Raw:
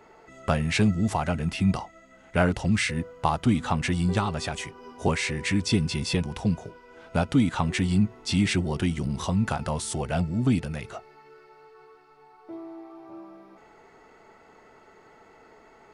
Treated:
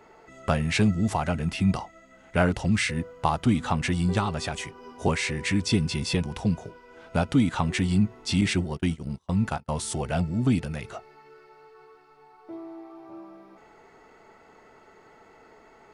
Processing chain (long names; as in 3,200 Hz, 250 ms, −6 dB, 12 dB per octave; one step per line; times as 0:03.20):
0:08.41–0:09.69: noise gate −26 dBFS, range −40 dB